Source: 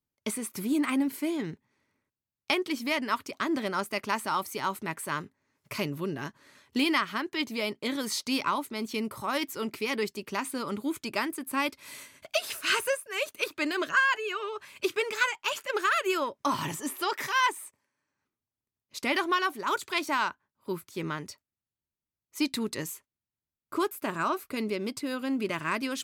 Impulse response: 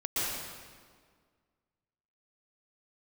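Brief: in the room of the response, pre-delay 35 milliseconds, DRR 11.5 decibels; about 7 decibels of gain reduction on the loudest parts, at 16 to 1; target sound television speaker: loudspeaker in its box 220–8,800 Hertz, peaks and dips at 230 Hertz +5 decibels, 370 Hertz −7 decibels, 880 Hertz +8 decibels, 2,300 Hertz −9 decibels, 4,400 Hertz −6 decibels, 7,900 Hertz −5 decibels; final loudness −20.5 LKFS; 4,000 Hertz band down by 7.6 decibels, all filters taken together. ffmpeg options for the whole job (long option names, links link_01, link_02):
-filter_complex "[0:a]equalizer=frequency=4000:width_type=o:gain=-7,acompressor=threshold=-28dB:ratio=16,asplit=2[link_01][link_02];[1:a]atrim=start_sample=2205,adelay=35[link_03];[link_02][link_03]afir=irnorm=-1:irlink=0,volume=-20dB[link_04];[link_01][link_04]amix=inputs=2:normalize=0,highpass=frequency=220:width=0.5412,highpass=frequency=220:width=1.3066,equalizer=frequency=230:width_type=q:width=4:gain=5,equalizer=frequency=370:width_type=q:width=4:gain=-7,equalizer=frequency=880:width_type=q:width=4:gain=8,equalizer=frequency=2300:width_type=q:width=4:gain=-9,equalizer=frequency=4400:width_type=q:width=4:gain=-6,equalizer=frequency=7900:width_type=q:width=4:gain=-5,lowpass=frequency=8800:width=0.5412,lowpass=frequency=8800:width=1.3066,volume=14dB"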